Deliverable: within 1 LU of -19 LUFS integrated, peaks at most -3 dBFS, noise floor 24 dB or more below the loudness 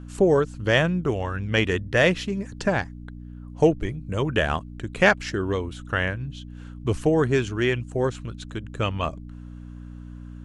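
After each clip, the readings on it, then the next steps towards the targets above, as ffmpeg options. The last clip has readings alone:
hum 60 Hz; harmonics up to 300 Hz; hum level -37 dBFS; loudness -24.0 LUFS; peak -4.0 dBFS; loudness target -19.0 LUFS
-> -af "bandreject=f=60:t=h:w=4,bandreject=f=120:t=h:w=4,bandreject=f=180:t=h:w=4,bandreject=f=240:t=h:w=4,bandreject=f=300:t=h:w=4"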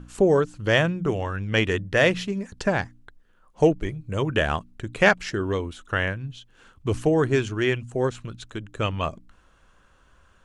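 hum none; loudness -24.0 LUFS; peak -4.0 dBFS; loudness target -19.0 LUFS
-> -af "volume=5dB,alimiter=limit=-3dB:level=0:latency=1"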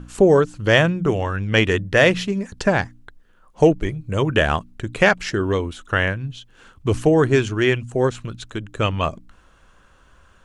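loudness -19.5 LUFS; peak -3.0 dBFS; noise floor -54 dBFS

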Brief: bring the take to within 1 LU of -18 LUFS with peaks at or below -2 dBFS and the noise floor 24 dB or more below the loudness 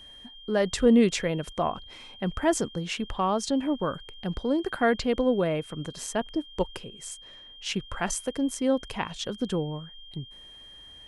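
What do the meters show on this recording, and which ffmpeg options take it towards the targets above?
steady tone 3200 Hz; tone level -46 dBFS; loudness -28.0 LUFS; peak -9.5 dBFS; loudness target -18.0 LUFS
-> -af "bandreject=f=3.2k:w=30"
-af "volume=10dB,alimiter=limit=-2dB:level=0:latency=1"

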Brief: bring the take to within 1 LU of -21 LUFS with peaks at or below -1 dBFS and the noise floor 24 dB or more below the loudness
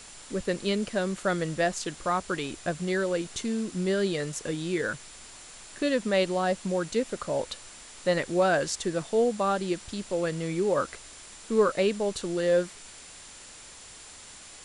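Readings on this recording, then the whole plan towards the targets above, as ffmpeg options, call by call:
steady tone 7200 Hz; tone level -52 dBFS; noise floor -47 dBFS; noise floor target -53 dBFS; loudness -28.5 LUFS; peak -12.0 dBFS; loudness target -21.0 LUFS
-> -af "bandreject=f=7.2k:w=30"
-af "afftdn=nr=6:nf=-47"
-af "volume=7.5dB"

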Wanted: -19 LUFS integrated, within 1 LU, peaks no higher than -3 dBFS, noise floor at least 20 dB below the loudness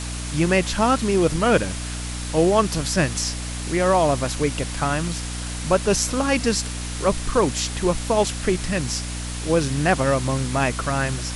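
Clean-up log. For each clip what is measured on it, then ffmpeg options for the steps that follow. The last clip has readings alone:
hum 60 Hz; harmonics up to 300 Hz; hum level -28 dBFS; noise floor -30 dBFS; noise floor target -42 dBFS; loudness -22.0 LUFS; peak -4.0 dBFS; loudness target -19.0 LUFS
-> -af "bandreject=f=60:t=h:w=4,bandreject=f=120:t=h:w=4,bandreject=f=180:t=h:w=4,bandreject=f=240:t=h:w=4,bandreject=f=300:t=h:w=4"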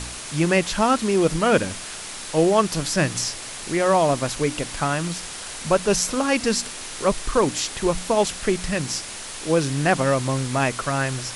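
hum none; noise floor -35 dBFS; noise floor target -43 dBFS
-> -af "afftdn=nr=8:nf=-35"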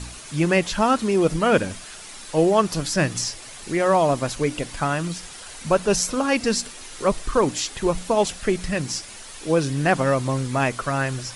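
noise floor -40 dBFS; noise floor target -43 dBFS
-> -af "afftdn=nr=6:nf=-40"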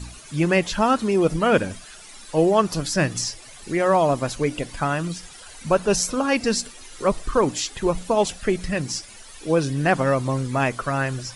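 noise floor -43 dBFS; loudness -22.5 LUFS; peak -4.0 dBFS; loudness target -19.0 LUFS
-> -af "volume=3.5dB,alimiter=limit=-3dB:level=0:latency=1"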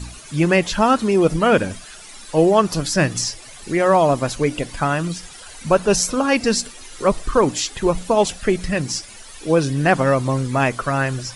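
loudness -19.0 LUFS; peak -3.0 dBFS; noise floor -40 dBFS

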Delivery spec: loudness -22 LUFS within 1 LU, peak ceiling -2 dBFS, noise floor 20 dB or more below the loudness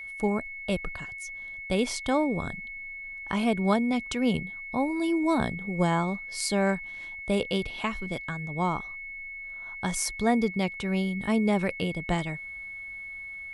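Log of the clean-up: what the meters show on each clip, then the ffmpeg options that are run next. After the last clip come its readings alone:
steady tone 2200 Hz; tone level -37 dBFS; loudness -29.0 LUFS; peak -11.0 dBFS; loudness target -22.0 LUFS
-> -af "bandreject=f=2.2k:w=30"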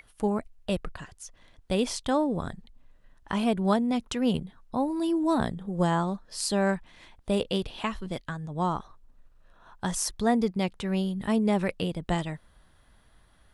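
steady tone none; loudness -28.5 LUFS; peak -11.0 dBFS; loudness target -22.0 LUFS
-> -af "volume=6.5dB"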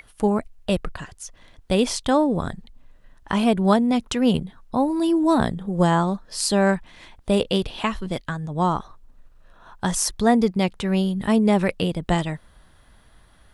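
loudness -22.0 LUFS; peak -4.5 dBFS; noise floor -54 dBFS

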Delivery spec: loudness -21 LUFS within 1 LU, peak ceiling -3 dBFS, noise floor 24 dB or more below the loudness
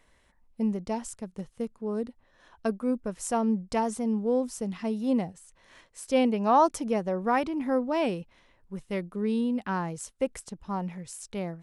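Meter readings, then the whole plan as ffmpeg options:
loudness -29.0 LUFS; peak -11.5 dBFS; loudness target -21.0 LUFS
-> -af "volume=8dB"

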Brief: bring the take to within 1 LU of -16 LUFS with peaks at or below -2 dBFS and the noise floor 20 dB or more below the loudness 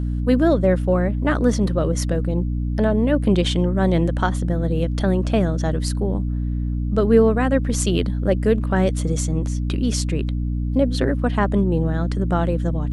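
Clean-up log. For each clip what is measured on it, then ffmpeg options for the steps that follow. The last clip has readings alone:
hum 60 Hz; harmonics up to 300 Hz; hum level -20 dBFS; loudness -20.5 LUFS; peak -3.5 dBFS; loudness target -16.0 LUFS
-> -af "bandreject=f=60:t=h:w=4,bandreject=f=120:t=h:w=4,bandreject=f=180:t=h:w=4,bandreject=f=240:t=h:w=4,bandreject=f=300:t=h:w=4"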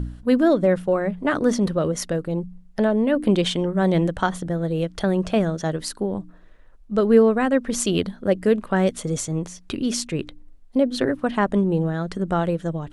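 hum none; loudness -22.0 LUFS; peak -4.0 dBFS; loudness target -16.0 LUFS
-> -af "volume=6dB,alimiter=limit=-2dB:level=0:latency=1"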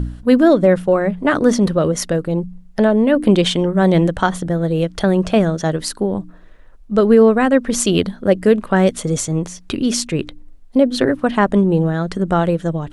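loudness -16.5 LUFS; peak -2.0 dBFS; noise floor -42 dBFS

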